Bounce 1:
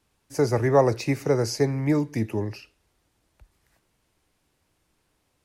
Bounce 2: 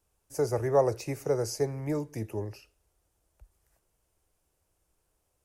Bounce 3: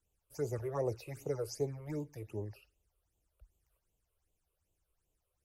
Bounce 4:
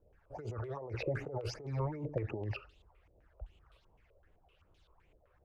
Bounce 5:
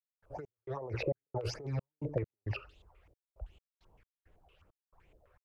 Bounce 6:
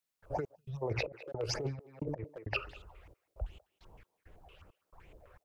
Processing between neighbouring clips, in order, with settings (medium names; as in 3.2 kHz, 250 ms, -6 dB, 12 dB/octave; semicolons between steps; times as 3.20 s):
graphic EQ 125/250/1000/2000/4000 Hz -6/-12/-5/-9/-10 dB
phase shifter stages 8, 2.6 Hz, lowest notch 220–1700 Hz; trim -6 dB
compressor with a negative ratio -47 dBFS, ratio -1; step-sequenced low-pass 7.8 Hz 580–3700 Hz; trim +7 dB
trance gate ".x.xx.xx.x.xxx.x" 67 bpm -60 dB; trim +2.5 dB
speakerphone echo 200 ms, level -19 dB; compressor with a negative ratio -39 dBFS, ratio -0.5; time-frequency box 0.55–0.82 s, 220–2400 Hz -26 dB; trim +4.5 dB